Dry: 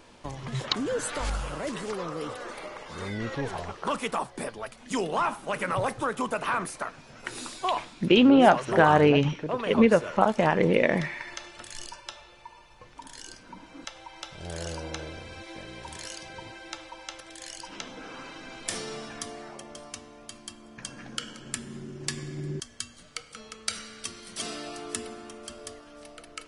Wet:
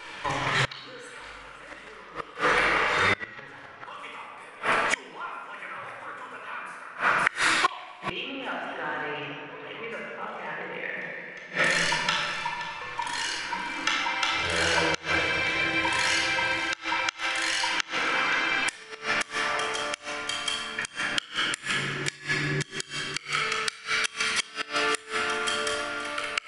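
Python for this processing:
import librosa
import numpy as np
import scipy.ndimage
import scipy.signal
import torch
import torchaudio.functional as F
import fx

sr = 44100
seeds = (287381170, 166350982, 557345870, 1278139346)

p1 = fx.low_shelf(x, sr, hz=300.0, db=-11.0)
p2 = p1 + fx.echo_single(p1, sr, ms=523, db=-14.5, dry=0)
p3 = fx.room_shoebox(p2, sr, seeds[0], volume_m3=2500.0, walls='mixed', distance_m=4.5)
p4 = 10.0 ** (-14.5 / 20.0) * np.tanh(p3 / 10.0 ** (-14.5 / 20.0))
p5 = p3 + (p4 * 10.0 ** (-5.0 / 20.0))
p6 = fx.gate_flip(p5, sr, shuts_db=-16.0, range_db=-25)
p7 = fx.peak_eq(p6, sr, hz=1900.0, db=14.0, octaves=2.0)
y = p7 * 10.0 ** (-2.0 / 20.0)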